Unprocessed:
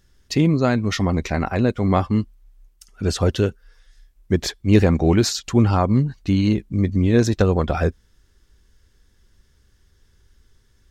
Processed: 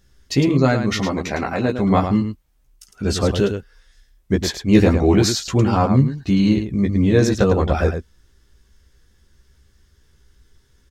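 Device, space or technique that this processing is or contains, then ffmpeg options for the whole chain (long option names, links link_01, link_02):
slapback doubling: -filter_complex "[0:a]asettb=1/sr,asplit=3[link_01][link_02][link_03];[link_01]atrim=end=0.994[link_04];[link_02]atrim=start=0.99:end=1.79,asetpts=PTS-STARTPTS,afade=type=in:duration=0.004:curve=qsin,afade=type=out:start_time=0.796:duration=0.004:curve=qsin,highpass=frequency=230:poles=1[link_05];[link_03]atrim=start=1.786[link_06];[link_04][link_05]acrossfade=duration=0.004:curve1=hsin:curve2=qsin[link_07];[link_07][link_06]acrossfade=duration=0.004:curve1=qsin:curve2=hsin,asplit=3[link_08][link_09][link_10];[link_09]adelay=15,volume=-3dB[link_11];[link_10]adelay=108,volume=-7dB[link_12];[link_08][link_11][link_12]amix=inputs=3:normalize=0"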